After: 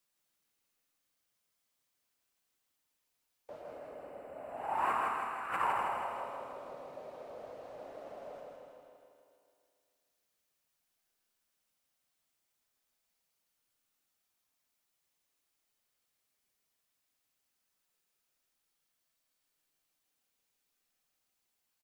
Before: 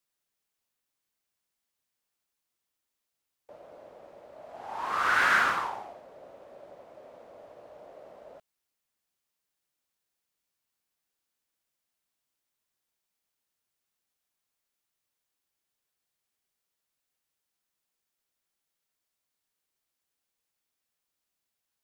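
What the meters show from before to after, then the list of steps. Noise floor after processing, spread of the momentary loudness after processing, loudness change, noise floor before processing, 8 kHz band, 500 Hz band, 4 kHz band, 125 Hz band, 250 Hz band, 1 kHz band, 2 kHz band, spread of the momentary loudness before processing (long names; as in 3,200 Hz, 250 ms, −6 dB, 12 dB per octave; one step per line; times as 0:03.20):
−82 dBFS, 18 LU, −12.5 dB, −85 dBFS, −12.5 dB, +0.5 dB, −14.0 dB, −4.0 dB, −3.0 dB, −3.5 dB, −14.5 dB, 19 LU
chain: compressor whose output falls as the input rises −32 dBFS, ratio −0.5
gain on a spectral selection 0:03.63–0:06.00, 3,000–7,200 Hz −14 dB
reverb reduction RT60 1.9 s
repeating echo 160 ms, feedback 56%, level −3 dB
four-comb reverb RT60 2.4 s, combs from 26 ms, DRR 2.5 dB
level −3 dB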